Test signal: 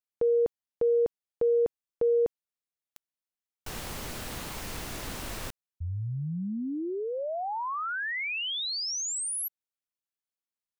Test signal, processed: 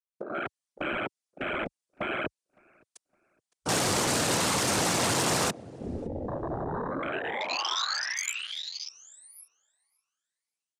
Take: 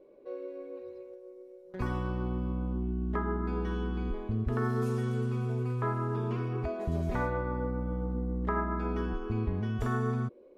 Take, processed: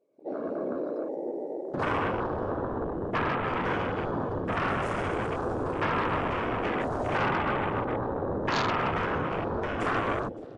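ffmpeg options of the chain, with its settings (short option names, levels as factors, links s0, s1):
-filter_complex "[0:a]acrossover=split=430|1600[s0][s1][s2];[s0]acompressor=threshold=0.0282:ratio=3[s3];[s1]acompressor=threshold=0.0224:ratio=5[s4];[s2]acompressor=threshold=0.00398:ratio=2.5[s5];[s3][s4][s5]amix=inputs=3:normalize=0,afftfilt=real='hypot(re,im)*cos(2*PI*random(0))':imag='hypot(re,im)*sin(2*PI*random(1))':win_size=512:overlap=0.75,highpass=f=110:w=0.5412,highpass=f=110:w=1.3066,highshelf=f=4700:g=-6,alimiter=level_in=2.82:limit=0.0631:level=0:latency=1:release=13,volume=0.355,dynaudnorm=f=120:g=5:m=5.96,aeval=exprs='0.141*(cos(1*acos(clip(val(0)/0.141,-1,1)))-cos(1*PI/2))+0.0355*(cos(5*acos(clip(val(0)/0.141,-1,1)))-cos(5*PI/2))':c=same,bass=f=250:g=-2,treble=f=4000:g=13,aresample=22050,aresample=44100,afftfilt=real='re*lt(hypot(re,im),0.282)':imag='im*lt(hypot(re,im),0.282)':win_size=1024:overlap=0.75,asplit=2[s6][s7];[s7]adelay=562,lowpass=f=2600:p=1,volume=0.211,asplit=2[s8][s9];[s9]adelay=562,lowpass=f=2600:p=1,volume=0.37,asplit=2[s10][s11];[s11]adelay=562,lowpass=f=2600:p=1,volume=0.37,asplit=2[s12][s13];[s13]adelay=562,lowpass=f=2600:p=1,volume=0.37[s14];[s8][s10][s12][s14]amix=inputs=4:normalize=0[s15];[s6][s15]amix=inputs=2:normalize=0,afwtdn=0.02"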